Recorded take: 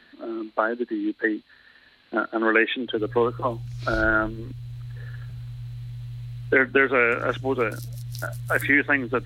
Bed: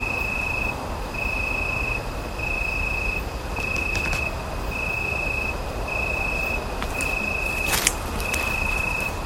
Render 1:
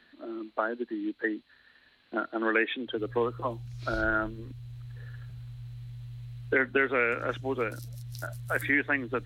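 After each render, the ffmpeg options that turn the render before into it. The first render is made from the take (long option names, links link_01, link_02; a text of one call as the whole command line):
ffmpeg -i in.wav -af "volume=-6.5dB" out.wav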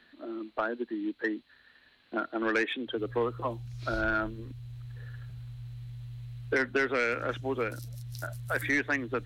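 ffmpeg -i in.wav -af "asoftclip=type=tanh:threshold=-19dB" out.wav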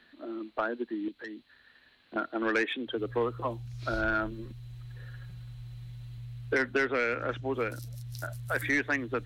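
ffmpeg -i in.wav -filter_complex "[0:a]asettb=1/sr,asplit=3[link_01][link_02][link_03];[link_01]atrim=end=1.084[link_04];[link_02]atrim=start=1.08:end=2.16,asetpts=PTS-STARTPTS,afade=type=in:duration=0.004:curve=qsin,afade=type=out:start_time=1.076:duration=0.004:curve=qsin,acrossover=split=150|3000[link_05][link_06][link_07];[link_06]acompressor=threshold=-41dB:ratio=6:attack=3.2:release=140:knee=2.83:detection=peak[link_08];[link_05][link_08][link_07]amix=inputs=3:normalize=0[link_09];[link_03]atrim=start=2.156[link_10];[link_04][link_09]acrossfade=duration=0.004:curve1=hsin:curve2=qsin[link_11];[link_11][link_10]acrossfade=duration=0.004:curve1=qsin:curve2=hsin,asettb=1/sr,asplit=3[link_12][link_13][link_14];[link_12]atrim=end=4.314[link_15];[link_13]atrim=start=4.31:end=6.18,asetpts=PTS-STARTPTS,afade=type=in:duration=0.004:curve=qsin,afade=type=out:start_time=1.866:duration=0.004:curve=qsin,aecho=1:1:5.5:0.62,atrim=end_sample=82467[link_16];[link_14]atrim=start=6.176[link_17];[link_15][link_16]acrossfade=duration=0.004:curve1=hsin:curve2=qsin[link_18];[link_18][link_17]acrossfade=duration=0.004:curve1=qsin:curve2=hsin,asettb=1/sr,asplit=3[link_19][link_20][link_21];[link_19]atrim=end=6.874[link_22];[link_20]atrim=start=6.87:end=7.54,asetpts=PTS-STARTPTS,afade=type=in:duration=0.004:curve=qsin,afade=type=out:start_time=0.666:duration=0.004:curve=qsin,equalizer=frequency=12000:width_type=o:width=1.5:gain=-12[link_23];[link_21]atrim=start=7.536[link_24];[link_22][link_23]acrossfade=duration=0.004:curve1=hsin:curve2=qsin[link_25];[link_25][link_24]acrossfade=duration=0.004:curve1=qsin:curve2=hsin" out.wav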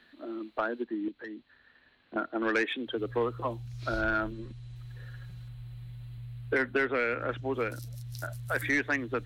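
ffmpeg -i in.wav -filter_complex "[0:a]asettb=1/sr,asplit=3[link_01][link_02][link_03];[link_01]atrim=end=0.844[link_04];[link_02]atrim=start=0.84:end=2.42,asetpts=PTS-STARTPTS,afade=type=in:duration=0.004:curve=qsin,afade=type=out:start_time=1.576:duration=0.004:curve=qsin,aemphasis=mode=reproduction:type=75fm[link_05];[link_03]atrim=start=2.416[link_06];[link_04][link_05]acrossfade=duration=0.004:curve1=hsin:curve2=qsin[link_07];[link_07][link_06]acrossfade=duration=0.004:curve1=qsin:curve2=hsin,asettb=1/sr,asplit=3[link_08][link_09][link_10];[link_08]atrim=end=4.324[link_11];[link_09]atrim=start=4.32:end=4.76,asetpts=PTS-STARTPTS,afade=type=in:duration=0.004:curve=qsin,afade=type=out:start_time=0.436:duration=0.004:curve=qsin,lowpass=frequency=9400:width=0.5412,lowpass=frequency=9400:width=1.3066[link_12];[link_10]atrim=start=4.756[link_13];[link_11][link_12]acrossfade=duration=0.004:curve1=hsin:curve2=qsin[link_14];[link_14][link_13]acrossfade=duration=0.004:curve1=qsin:curve2=hsin,asettb=1/sr,asplit=3[link_15][link_16][link_17];[link_15]atrim=end=5.484[link_18];[link_16]atrim=start=5.48:end=7.38,asetpts=PTS-STARTPTS,afade=type=in:duration=0.004:curve=qsin,afade=type=out:start_time=1.896:duration=0.004:curve=qsin,equalizer=frequency=5900:width_type=o:width=0.66:gain=-11.5[link_19];[link_17]atrim=start=7.376[link_20];[link_18][link_19]acrossfade=duration=0.004:curve1=hsin:curve2=qsin[link_21];[link_21][link_20]acrossfade=duration=0.004:curve1=qsin:curve2=hsin" out.wav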